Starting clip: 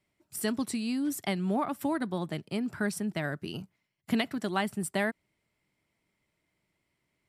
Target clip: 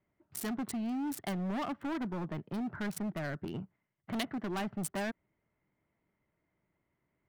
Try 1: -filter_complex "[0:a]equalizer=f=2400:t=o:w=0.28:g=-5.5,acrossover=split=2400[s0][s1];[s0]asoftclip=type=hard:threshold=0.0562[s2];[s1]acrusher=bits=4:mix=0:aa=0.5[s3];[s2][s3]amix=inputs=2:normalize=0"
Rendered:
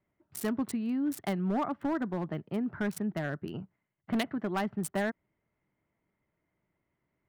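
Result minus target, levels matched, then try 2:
hard clipper: distortion -9 dB
-filter_complex "[0:a]equalizer=f=2400:t=o:w=0.28:g=-5.5,acrossover=split=2400[s0][s1];[s0]asoftclip=type=hard:threshold=0.0224[s2];[s1]acrusher=bits=4:mix=0:aa=0.5[s3];[s2][s3]amix=inputs=2:normalize=0"

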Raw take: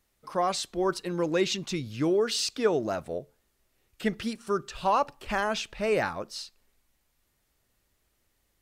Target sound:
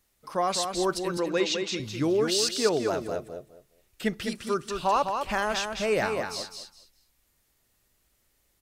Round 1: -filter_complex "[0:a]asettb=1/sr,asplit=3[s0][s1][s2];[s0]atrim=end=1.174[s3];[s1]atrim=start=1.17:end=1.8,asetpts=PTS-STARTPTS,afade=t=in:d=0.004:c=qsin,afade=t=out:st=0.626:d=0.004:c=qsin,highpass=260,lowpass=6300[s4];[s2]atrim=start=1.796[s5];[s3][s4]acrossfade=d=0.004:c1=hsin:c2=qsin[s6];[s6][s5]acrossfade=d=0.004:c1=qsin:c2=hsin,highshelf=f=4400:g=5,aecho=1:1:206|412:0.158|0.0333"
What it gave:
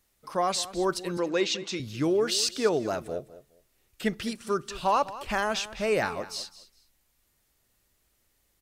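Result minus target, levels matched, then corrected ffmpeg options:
echo-to-direct -10 dB
-filter_complex "[0:a]asettb=1/sr,asplit=3[s0][s1][s2];[s0]atrim=end=1.174[s3];[s1]atrim=start=1.17:end=1.8,asetpts=PTS-STARTPTS,afade=t=in:d=0.004:c=qsin,afade=t=out:st=0.626:d=0.004:c=qsin,highpass=260,lowpass=6300[s4];[s2]atrim=start=1.796[s5];[s3][s4]acrossfade=d=0.004:c1=hsin:c2=qsin[s6];[s6][s5]acrossfade=d=0.004:c1=qsin:c2=hsin,highshelf=f=4400:g=5,aecho=1:1:206|412|618:0.501|0.105|0.0221"

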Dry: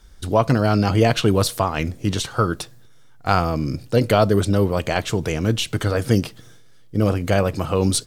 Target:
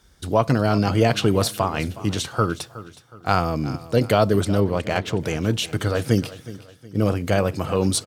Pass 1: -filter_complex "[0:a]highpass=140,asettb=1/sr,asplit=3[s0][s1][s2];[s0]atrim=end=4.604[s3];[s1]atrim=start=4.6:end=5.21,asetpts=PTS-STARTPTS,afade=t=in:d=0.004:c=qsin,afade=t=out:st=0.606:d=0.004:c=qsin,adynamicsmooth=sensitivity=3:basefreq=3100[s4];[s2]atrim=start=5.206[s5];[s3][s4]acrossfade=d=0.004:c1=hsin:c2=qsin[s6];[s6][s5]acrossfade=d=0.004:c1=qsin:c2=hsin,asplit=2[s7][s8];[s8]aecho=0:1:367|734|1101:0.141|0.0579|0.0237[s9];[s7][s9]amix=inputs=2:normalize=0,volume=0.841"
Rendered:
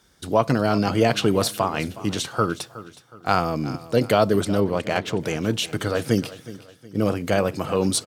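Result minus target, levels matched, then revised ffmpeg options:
125 Hz band -3.5 dB
-filter_complex "[0:a]highpass=70,asettb=1/sr,asplit=3[s0][s1][s2];[s0]atrim=end=4.604[s3];[s1]atrim=start=4.6:end=5.21,asetpts=PTS-STARTPTS,afade=t=in:d=0.004:c=qsin,afade=t=out:st=0.606:d=0.004:c=qsin,adynamicsmooth=sensitivity=3:basefreq=3100[s4];[s2]atrim=start=5.206[s5];[s3][s4]acrossfade=d=0.004:c1=hsin:c2=qsin[s6];[s6][s5]acrossfade=d=0.004:c1=qsin:c2=hsin,asplit=2[s7][s8];[s8]aecho=0:1:367|734|1101:0.141|0.0579|0.0237[s9];[s7][s9]amix=inputs=2:normalize=0,volume=0.841"

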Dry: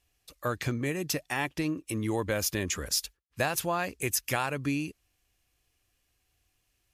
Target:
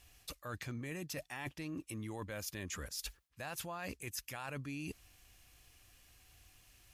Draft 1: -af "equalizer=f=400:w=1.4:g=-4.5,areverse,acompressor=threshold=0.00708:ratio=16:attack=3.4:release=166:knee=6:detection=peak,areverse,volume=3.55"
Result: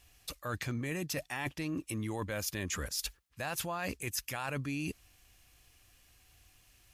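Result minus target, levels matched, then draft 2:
compression: peak gain reduction -6.5 dB
-af "equalizer=f=400:w=1.4:g=-4.5,areverse,acompressor=threshold=0.00316:ratio=16:attack=3.4:release=166:knee=6:detection=peak,areverse,volume=3.55"

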